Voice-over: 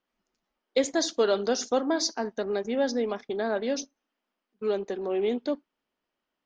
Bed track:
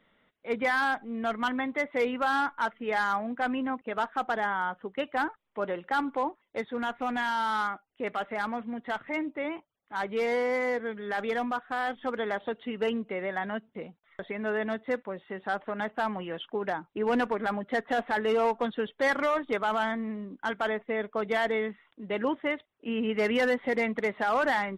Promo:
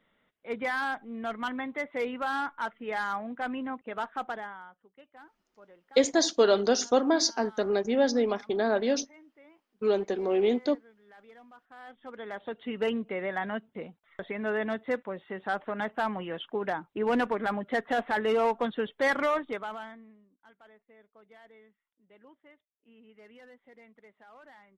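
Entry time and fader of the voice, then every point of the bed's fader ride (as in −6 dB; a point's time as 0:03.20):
5.20 s, +2.0 dB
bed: 0:04.26 −4 dB
0:04.82 −23.5 dB
0:11.51 −23.5 dB
0:12.71 0 dB
0:19.34 0 dB
0:20.35 −27.5 dB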